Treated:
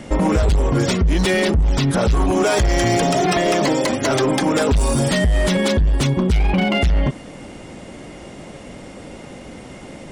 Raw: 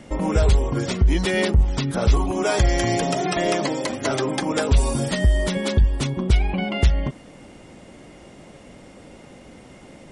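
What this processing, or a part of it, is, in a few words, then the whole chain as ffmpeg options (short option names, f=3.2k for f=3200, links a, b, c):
limiter into clipper: -af "alimiter=limit=-16dB:level=0:latency=1:release=25,asoftclip=type=hard:threshold=-20dB,volume=8dB"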